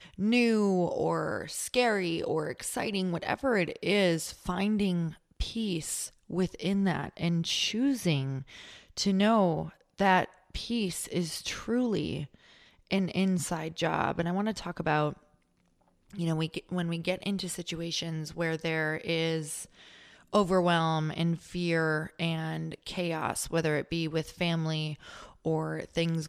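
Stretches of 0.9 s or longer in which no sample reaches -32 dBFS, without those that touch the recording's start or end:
15.13–16.19 s

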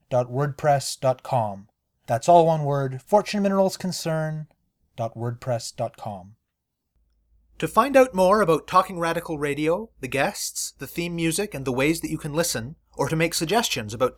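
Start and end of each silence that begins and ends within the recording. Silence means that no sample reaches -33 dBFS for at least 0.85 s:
6.19–7.60 s

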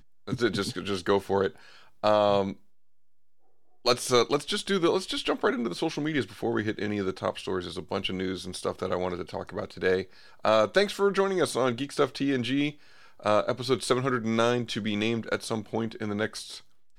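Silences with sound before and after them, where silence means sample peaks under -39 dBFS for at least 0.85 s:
2.53–3.85 s

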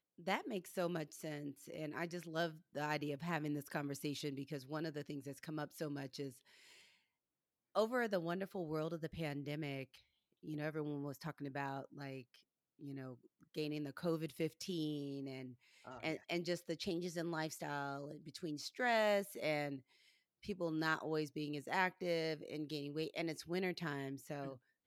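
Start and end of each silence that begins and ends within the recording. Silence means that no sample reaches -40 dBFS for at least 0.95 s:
6.28–7.75 s

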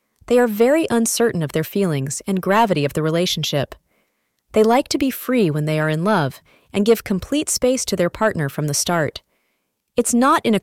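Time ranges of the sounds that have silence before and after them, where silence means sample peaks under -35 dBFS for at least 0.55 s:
4.54–9.18 s

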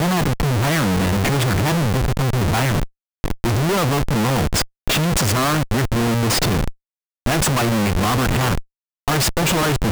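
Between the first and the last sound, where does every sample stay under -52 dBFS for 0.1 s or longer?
2.90–3.24 s
4.68–4.88 s
6.75–7.26 s
8.65–9.08 s

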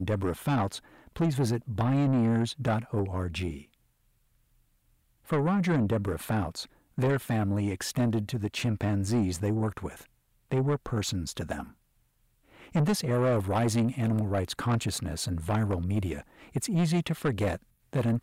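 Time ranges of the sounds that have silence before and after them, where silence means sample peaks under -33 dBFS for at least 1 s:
5.30–11.63 s

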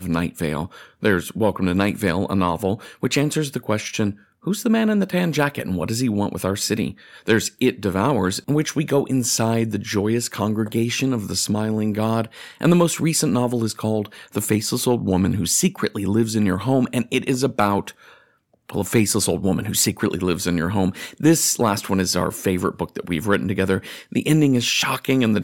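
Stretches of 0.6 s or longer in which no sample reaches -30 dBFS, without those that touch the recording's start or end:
17.90–18.69 s

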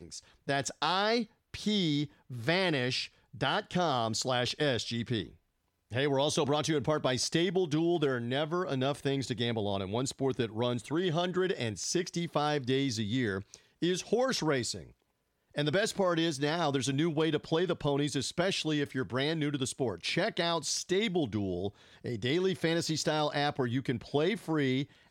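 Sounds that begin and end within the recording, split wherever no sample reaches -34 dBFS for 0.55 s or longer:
5.93–14.81 s

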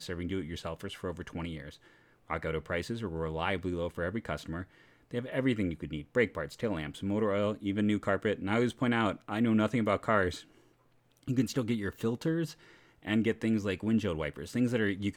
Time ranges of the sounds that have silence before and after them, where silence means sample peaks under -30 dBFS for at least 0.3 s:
2.30–4.61 s
5.14–10.30 s
11.29–12.45 s

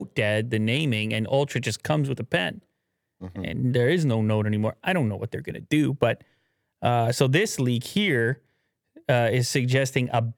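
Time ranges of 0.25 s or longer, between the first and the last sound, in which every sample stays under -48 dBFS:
2.59–3.21 s
6.22–6.82 s
8.38–8.96 s

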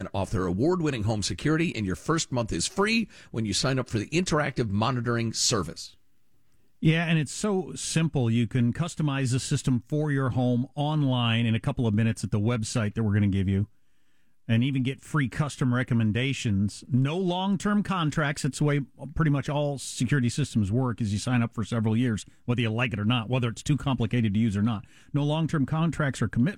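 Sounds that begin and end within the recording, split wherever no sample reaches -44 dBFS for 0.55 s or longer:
6.82–13.65 s

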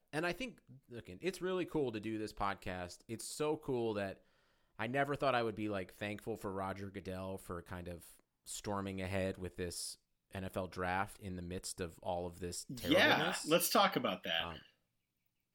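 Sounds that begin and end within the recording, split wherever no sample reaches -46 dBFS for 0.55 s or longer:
4.79–14.59 s

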